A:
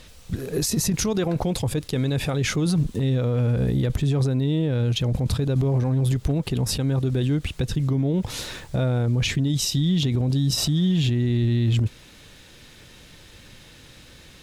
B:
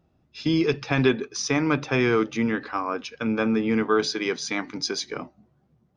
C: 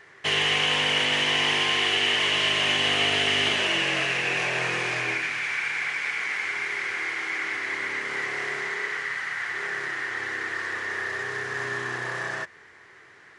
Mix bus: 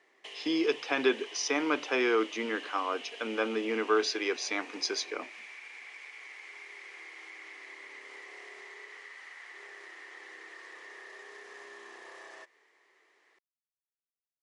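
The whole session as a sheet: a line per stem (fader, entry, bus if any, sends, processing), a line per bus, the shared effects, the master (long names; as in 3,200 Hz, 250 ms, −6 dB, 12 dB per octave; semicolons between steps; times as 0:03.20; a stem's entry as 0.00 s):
muted
−4.0 dB, 0.00 s, no bus, no send, no processing
−13.0 dB, 0.00 s, bus A, no send, no processing
bus A: 0.0 dB, parametric band 1,500 Hz −11.5 dB 0.37 octaves; downward compressor, threshold −44 dBFS, peak gain reduction 10.5 dB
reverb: not used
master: high-pass filter 320 Hz 24 dB per octave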